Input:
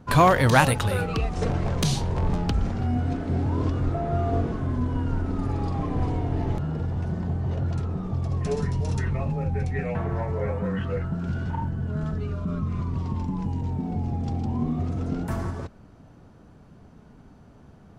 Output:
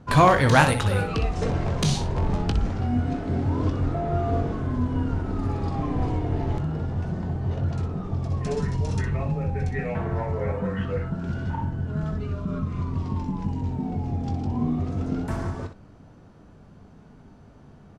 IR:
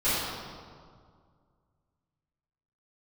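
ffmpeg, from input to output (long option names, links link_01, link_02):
-filter_complex "[0:a]lowpass=9500,asplit=2[link_01][link_02];[link_02]aecho=0:1:20|62:0.316|0.335[link_03];[link_01][link_03]amix=inputs=2:normalize=0"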